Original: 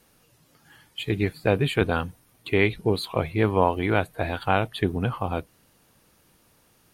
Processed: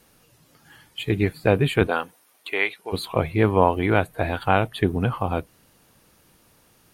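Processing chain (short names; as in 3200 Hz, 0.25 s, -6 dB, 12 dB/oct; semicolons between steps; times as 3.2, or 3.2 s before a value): 1.86–2.92 HPF 340 Hz -> 970 Hz 12 dB/oct; dynamic EQ 4500 Hz, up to -4 dB, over -44 dBFS, Q 1.1; gain +3 dB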